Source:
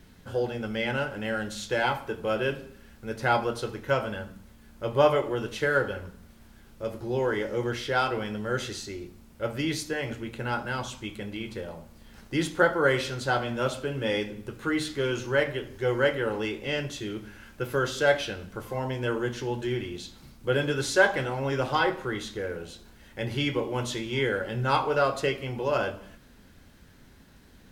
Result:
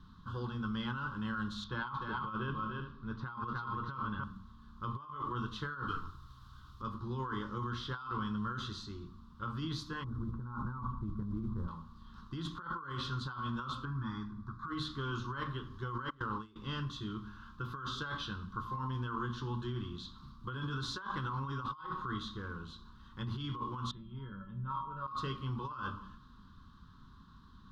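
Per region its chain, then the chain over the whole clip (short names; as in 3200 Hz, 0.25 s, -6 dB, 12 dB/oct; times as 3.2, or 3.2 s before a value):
1.64–4.24 air absorption 160 m + tapped delay 0.3/0.373 s -5.5/-12.5 dB
5.88–6.82 high shelf 2900 Hz +9.5 dB + frequency shift -100 Hz
10.04–11.68 LPF 1400 Hz 24 dB/oct + tilt -2.5 dB/oct + modulation noise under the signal 33 dB
13.85–14.68 LPF 4800 Hz + fixed phaser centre 1200 Hz, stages 4
16.1–16.56 median filter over 9 samples + gate with hold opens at -20 dBFS, closes at -27 dBFS
23.91–25.08 LPF 3700 Hz 24 dB/oct + tilt -3 dB/oct + resonator 190 Hz, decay 0.35 s, harmonics odd, mix 90%
whole clip: EQ curve 210 Hz 0 dB, 400 Hz -13 dB, 680 Hz -28 dB, 1100 Hz +13 dB, 2200 Hz -23 dB, 3600 Hz -1 dB, 8600 Hz -23 dB; negative-ratio compressor -34 dBFS, ratio -1; gain -4.5 dB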